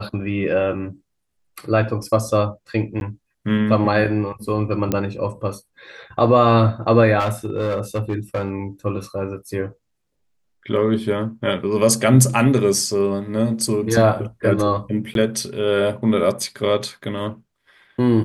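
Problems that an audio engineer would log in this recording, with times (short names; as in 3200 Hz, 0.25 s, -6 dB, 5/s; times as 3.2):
3–3.01 gap 11 ms
4.92 pop -7 dBFS
7.19–8.51 clipped -17 dBFS
15.14–15.15 gap 12 ms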